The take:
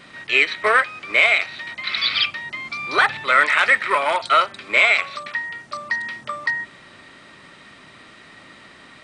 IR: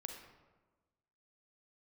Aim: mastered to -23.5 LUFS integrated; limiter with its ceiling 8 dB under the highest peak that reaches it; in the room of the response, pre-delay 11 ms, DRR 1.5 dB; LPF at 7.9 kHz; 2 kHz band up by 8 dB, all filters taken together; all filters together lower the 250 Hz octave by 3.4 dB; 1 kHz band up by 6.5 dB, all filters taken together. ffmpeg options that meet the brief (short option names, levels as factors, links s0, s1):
-filter_complex "[0:a]lowpass=7900,equalizer=f=250:t=o:g=-6,equalizer=f=1000:t=o:g=5.5,equalizer=f=2000:t=o:g=8,alimiter=limit=0.631:level=0:latency=1,asplit=2[s0][s1];[1:a]atrim=start_sample=2205,adelay=11[s2];[s1][s2]afir=irnorm=-1:irlink=0,volume=1.19[s3];[s0][s3]amix=inputs=2:normalize=0,volume=0.299"